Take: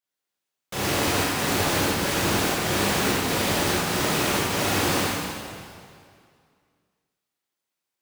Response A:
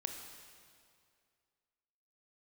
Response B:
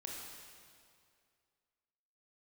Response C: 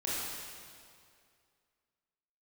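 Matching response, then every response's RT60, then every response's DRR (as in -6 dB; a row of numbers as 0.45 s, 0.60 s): C; 2.3 s, 2.3 s, 2.3 s; 4.0 dB, -2.5 dB, -8.0 dB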